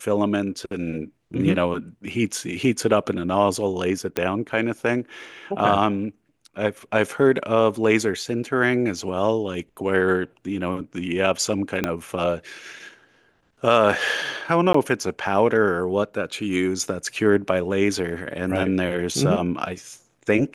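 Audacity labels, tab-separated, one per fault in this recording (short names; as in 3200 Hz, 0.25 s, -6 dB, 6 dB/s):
4.170000	4.170000	pop -9 dBFS
11.840000	11.840000	pop -8 dBFS
14.730000	14.740000	gap 14 ms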